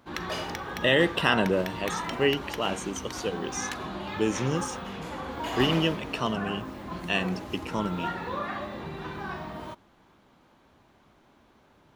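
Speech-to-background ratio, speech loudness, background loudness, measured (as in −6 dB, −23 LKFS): 7.0 dB, −28.5 LKFS, −35.5 LKFS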